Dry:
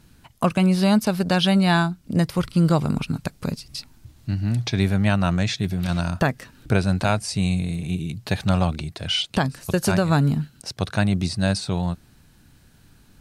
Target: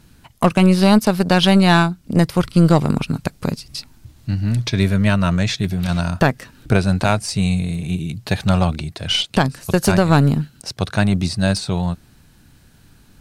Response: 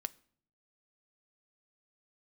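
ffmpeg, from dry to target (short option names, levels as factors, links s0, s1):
-filter_complex "[0:a]aeval=exprs='0.501*(cos(1*acos(clip(val(0)/0.501,-1,1)))-cos(1*PI/2))+0.0355*(cos(4*acos(clip(val(0)/0.501,-1,1)))-cos(4*PI/2))+0.0112*(cos(7*acos(clip(val(0)/0.501,-1,1)))-cos(7*PI/2))':c=same,asettb=1/sr,asplit=3[s0][s1][s2];[s0]atrim=end=4.454[s3];[s1]atrim=start=4.45:end=5.41,asetpts=PTS-STARTPTS,afade=t=in:d=0.004:c=qsin,afade=t=out:st=0.956:d=0.004:c=qsin,asuperstop=centerf=770:order=4:qfactor=4.7[s4];[s2]atrim=start=5.406[s5];[s3][s4]acrossfade=d=0.004:c1=hsin:c2=qsin[s6];[s6][s5]acrossfade=d=0.004:c1=qsin:c2=hsin,volume=1.78"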